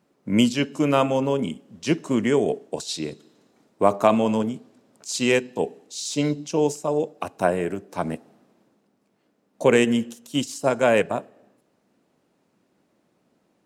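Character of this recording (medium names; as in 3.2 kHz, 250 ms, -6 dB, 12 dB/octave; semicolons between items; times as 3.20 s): noise floor -68 dBFS; spectral tilt -5.0 dB/octave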